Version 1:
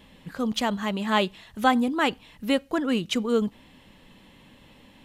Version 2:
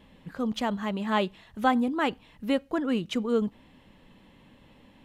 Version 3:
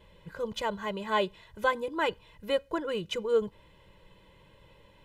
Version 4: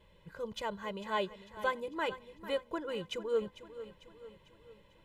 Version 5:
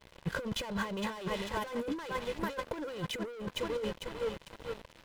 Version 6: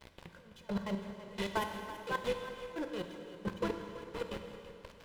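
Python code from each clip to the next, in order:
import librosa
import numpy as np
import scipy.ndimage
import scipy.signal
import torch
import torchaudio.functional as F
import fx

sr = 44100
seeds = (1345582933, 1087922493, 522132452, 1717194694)

y1 = fx.high_shelf(x, sr, hz=2600.0, db=-8.0)
y1 = y1 * librosa.db_to_amplitude(-2.0)
y2 = y1 + 0.91 * np.pad(y1, (int(2.0 * sr / 1000.0), 0))[:len(y1)]
y2 = y2 * librosa.db_to_amplitude(-3.5)
y3 = fx.echo_feedback(y2, sr, ms=448, feedback_pct=51, wet_db=-14.0)
y3 = y3 * librosa.db_to_amplitude(-6.0)
y4 = fx.leveller(y3, sr, passes=5)
y4 = fx.over_compress(y4, sr, threshold_db=-29.0, ratio=-0.5)
y4 = y4 * librosa.db_to_amplitude(-5.5)
y5 = fx.step_gate(y4, sr, bpm=174, pattern='x.x.....', floor_db=-24.0, edge_ms=4.5)
y5 = y5 + 10.0 ** (-14.0 / 20.0) * np.pad(y5, (int(331 * sr / 1000.0), 0))[:len(y5)]
y5 = fx.rev_plate(y5, sr, seeds[0], rt60_s=2.6, hf_ratio=0.9, predelay_ms=0, drr_db=5.0)
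y5 = y5 * librosa.db_to_amplitude(2.0)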